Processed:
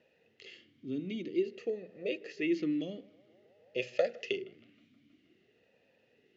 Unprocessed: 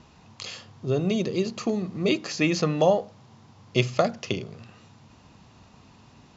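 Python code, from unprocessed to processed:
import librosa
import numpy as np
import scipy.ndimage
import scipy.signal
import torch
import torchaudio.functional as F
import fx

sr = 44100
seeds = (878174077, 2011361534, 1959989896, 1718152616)

y = fx.high_shelf(x, sr, hz=2300.0, db=12.0, at=(3.8, 4.36), fade=0.02)
y = fx.echo_banded(y, sr, ms=158, feedback_pct=78, hz=960.0, wet_db=-18.5)
y = fx.vowel_sweep(y, sr, vowels='e-i', hz=0.51)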